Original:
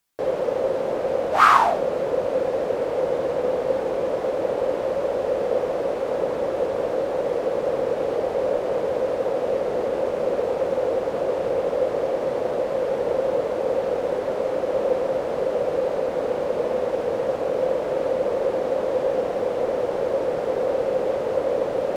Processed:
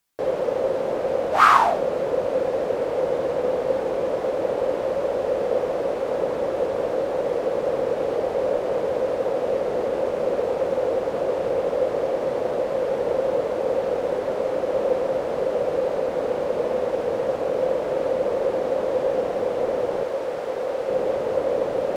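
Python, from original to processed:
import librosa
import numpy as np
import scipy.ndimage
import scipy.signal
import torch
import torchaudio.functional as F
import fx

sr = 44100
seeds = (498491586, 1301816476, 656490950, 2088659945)

y = fx.low_shelf(x, sr, hz=470.0, db=-8.0, at=(20.03, 20.89))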